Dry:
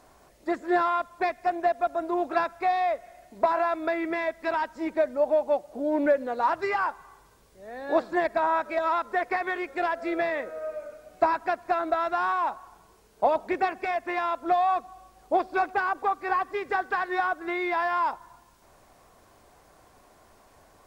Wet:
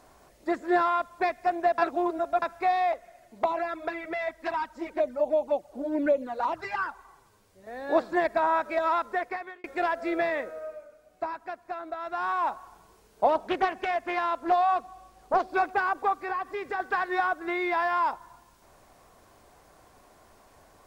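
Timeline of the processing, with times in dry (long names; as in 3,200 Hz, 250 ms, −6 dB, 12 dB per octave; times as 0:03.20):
0:01.78–0:02.42: reverse
0:02.92–0:07.67: flanger swept by the level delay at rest 11.3 ms, full sweep at −20 dBFS
0:09.02–0:09.64: fade out
0:10.39–0:12.47: duck −10 dB, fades 0.48 s
0:13.29–0:15.49: highs frequency-modulated by the lows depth 0.35 ms
0:16.13–0:16.80: downward compressor 2 to 1, threshold −31 dBFS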